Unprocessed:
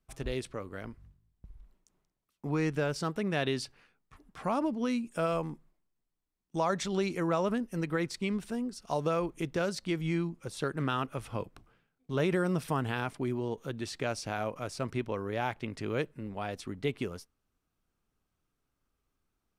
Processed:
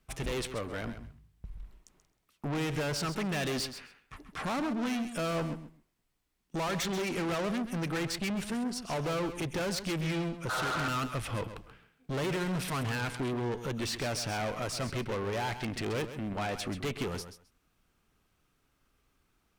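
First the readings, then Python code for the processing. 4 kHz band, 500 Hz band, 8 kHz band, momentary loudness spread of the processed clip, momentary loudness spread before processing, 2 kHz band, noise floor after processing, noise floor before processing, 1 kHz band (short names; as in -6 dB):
+5.0 dB, -2.0 dB, +6.0 dB, 11 LU, 9 LU, +2.0 dB, -75 dBFS, -83 dBFS, 0.0 dB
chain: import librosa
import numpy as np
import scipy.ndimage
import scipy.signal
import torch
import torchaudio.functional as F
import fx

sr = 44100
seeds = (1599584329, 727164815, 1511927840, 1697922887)

p1 = fx.spec_repair(x, sr, seeds[0], start_s=10.52, length_s=0.33, low_hz=410.0, high_hz=1600.0, source='after')
p2 = fx.peak_eq(p1, sr, hz=2400.0, db=4.5, octaves=1.6)
p3 = fx.tube_stage(p2, sr, drive_db=39.0, bias=0.25)
p4 = p3 + fx.echo_feedback(p3, sr, ms=132, feedback_pct=16, wet_db=-11.0, dry=0)
y = p4 * 10.0 ** (8.5 / 20.0)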